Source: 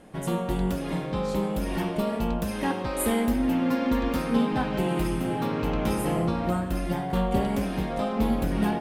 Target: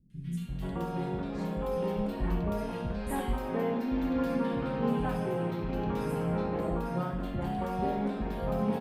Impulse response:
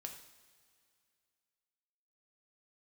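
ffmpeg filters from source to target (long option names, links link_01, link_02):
-filter_complex "[0:a]acrossover=split=200|2300[link_01][link_02][link_03];[link_03]adelay=100[link_04];[link_02]adelay=480[link_05];[link_01][link_05][link_04]amix=inputs=3:normalize=0[link_06];[1:a]atrim=start_sample=2205,atrim=end_sample=4410[link_07];[link_06][link_07]afir=irnorm=-1:irlink=0,asplit=3[link_08][link_09][link_10];[link_08]afade=type=out:start_time=1.91:duration=0.02[link_11];[link_09]asubboost=boost=3:cutoff=150,afade=type=in:start_time=1.91:duration=0.02,afade=type=out:start_time=3.36:duration=0.02[link_12];[link_10]afade=type=in:start_time=3.36:duration=0.02[link_13];[link_11][link_12][link_13]amix=inputs=3:normalize=0,aresample=32000,aresample=44100,equalizer=frequency=9900:width_type=o:width=2.2:gain=-11"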